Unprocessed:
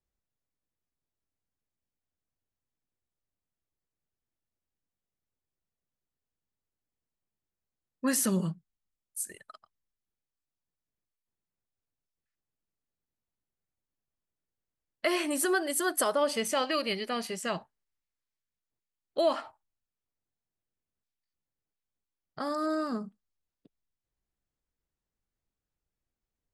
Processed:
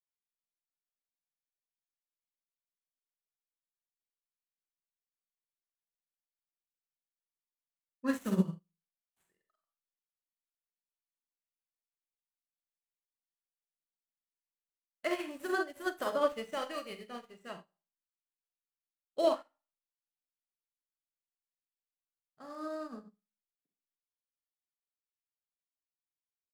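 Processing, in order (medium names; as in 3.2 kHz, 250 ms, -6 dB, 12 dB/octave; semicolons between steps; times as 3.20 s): median filter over 9 samples; Schroeder reverb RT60 0.43 s, combs from 33 ms, DRR 3 dB; upward expansion 2.5:1, over -44 dBFS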